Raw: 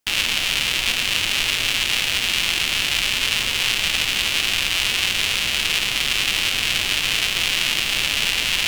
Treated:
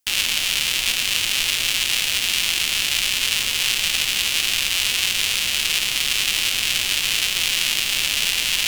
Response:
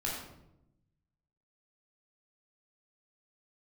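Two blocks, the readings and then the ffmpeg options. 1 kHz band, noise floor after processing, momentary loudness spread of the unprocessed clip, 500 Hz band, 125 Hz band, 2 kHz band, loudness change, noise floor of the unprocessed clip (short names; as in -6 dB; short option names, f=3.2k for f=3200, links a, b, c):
-4.0 dB, -24 dBFS, 1 LU, -5.0 dB, -5.0 dB, -2.0 dB, 0.0 dB, -24 dBFS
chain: -af "highshelf=f=3.6k:g=10.5,volume=-5dB"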